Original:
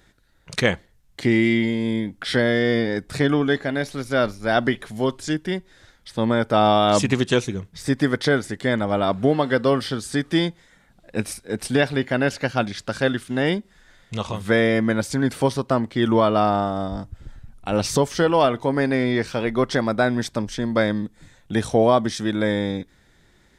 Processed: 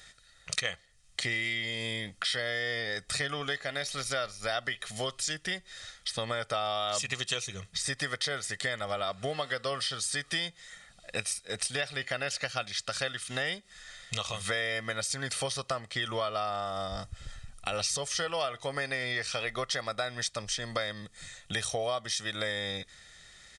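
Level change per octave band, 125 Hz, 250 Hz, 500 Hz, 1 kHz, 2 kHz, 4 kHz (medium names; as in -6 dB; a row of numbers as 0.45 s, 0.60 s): -15.5 dB, -23.5 dB, -14.5 dB, -12.0 dB, -6.5 dB, -2.0 dB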